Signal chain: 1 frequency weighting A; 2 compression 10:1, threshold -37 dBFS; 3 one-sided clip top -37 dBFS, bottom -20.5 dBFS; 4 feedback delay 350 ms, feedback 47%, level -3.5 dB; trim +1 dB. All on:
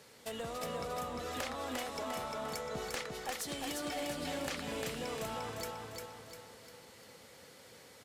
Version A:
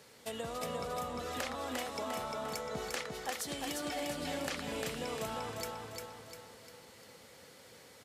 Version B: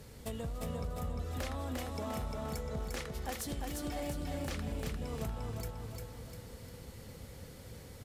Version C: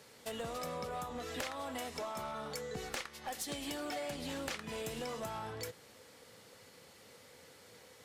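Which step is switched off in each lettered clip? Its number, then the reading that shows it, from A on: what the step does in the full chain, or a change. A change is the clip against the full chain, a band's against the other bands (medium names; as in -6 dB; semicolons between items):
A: 3, distortion -15 dB; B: 1, 125 Hz band +14.0 dB; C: 4, echo-to-direct -2.5 dB to none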